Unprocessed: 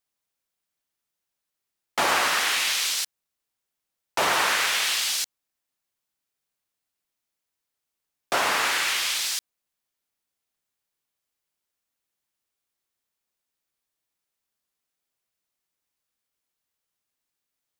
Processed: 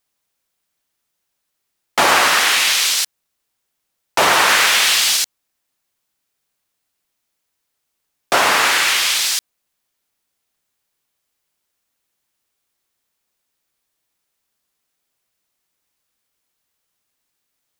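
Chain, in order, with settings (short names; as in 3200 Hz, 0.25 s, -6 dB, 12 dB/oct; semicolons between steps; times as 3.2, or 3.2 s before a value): 4.49–5.17 zero-crossing step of -34 dBFS; gain +9 dB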